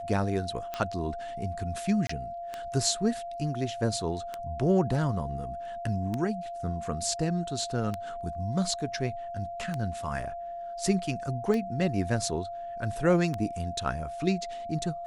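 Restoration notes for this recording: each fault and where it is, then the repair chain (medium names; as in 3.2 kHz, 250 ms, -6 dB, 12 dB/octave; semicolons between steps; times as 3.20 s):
tick 33 1/3 rpm -18 dBFS
whine 690 Hz -35 dBFS
2.07–2.09 s: dropout 24 ms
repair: de-click; band-stop 690 Hz, Q 30; interpolate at 2.07 s, 24 ms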